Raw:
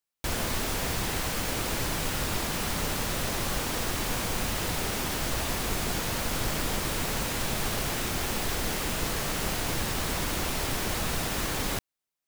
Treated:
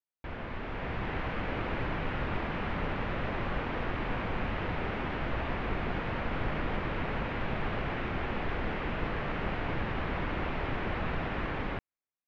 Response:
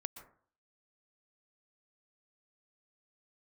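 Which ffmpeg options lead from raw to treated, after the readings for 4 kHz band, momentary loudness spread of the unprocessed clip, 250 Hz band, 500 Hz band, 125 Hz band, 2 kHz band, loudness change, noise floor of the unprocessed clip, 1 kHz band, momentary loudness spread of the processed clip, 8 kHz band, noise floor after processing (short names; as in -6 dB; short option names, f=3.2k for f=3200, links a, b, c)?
-13.5 dB, 0 LU, -1.5 dB, -2.0 dB, -1.5 dB, -2.5 dB, -5.5 dB, under -85 dBFS, -1.5 dB, 1 LU, under -35 dB, under -85 dBFS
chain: -af "lowpass=f=2.5k:w=0.5412,lowpass=f=2.5k:w=1.3066,dynaudnorm=f=240:g=7:m=7dB,volume=-8.5dB"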